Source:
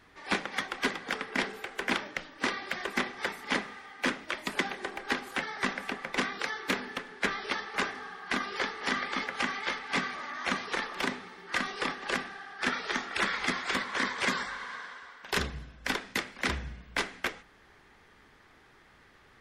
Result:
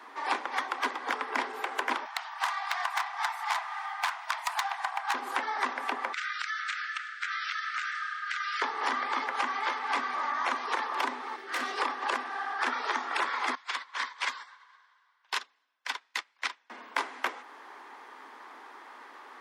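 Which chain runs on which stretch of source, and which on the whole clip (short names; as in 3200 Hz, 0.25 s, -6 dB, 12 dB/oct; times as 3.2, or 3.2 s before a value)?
2.05–5.14 self-modulated delay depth 0.11 ms + brick-wall FIR high-pass 640 Hz
6.13–8.62 brick-wall FIR band-pass 1200–8700 Hz + compressor 5:1, threshold -37 dBFS
11.36–11.78 bell 970 Hz -15 dB 0.41 oct + tube stage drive 34 dB, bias 0.55
13.55–16.7 band-pass 4000 Hz, Q 0.71 + upward expander 2.5:1, over -47 dBFS
whole clip: steep high-pass 240 Hz 72 dB/oct; bell 970 Hz +13.5 dB 0.88 oct; compressor 5:1, threshold -33 dBFS; gain +5 dB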